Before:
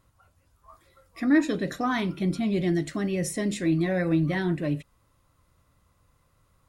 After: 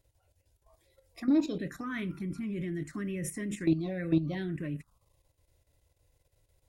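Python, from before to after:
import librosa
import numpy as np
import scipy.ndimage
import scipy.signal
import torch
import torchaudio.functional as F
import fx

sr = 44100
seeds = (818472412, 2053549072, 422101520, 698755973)

y = fx.level_steps(x, sr, step_db=11)
y = fx.env_phaser(y, sr, low_hz=200.0, high_hz=1800.0, full_db=-26.0)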